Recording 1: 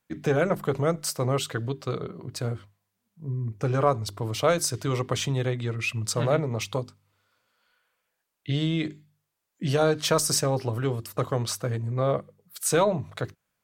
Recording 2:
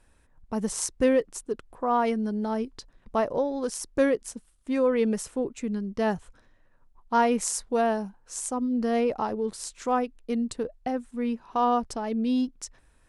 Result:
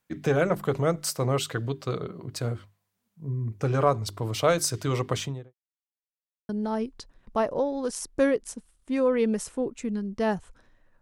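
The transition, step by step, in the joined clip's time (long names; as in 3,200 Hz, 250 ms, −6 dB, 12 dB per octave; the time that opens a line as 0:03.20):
recording 1
0:05.09–0:05.54: fade out and dull
0:05.54–0:06.49: silence
0:06.49: continue with recording 2 from 0:02.28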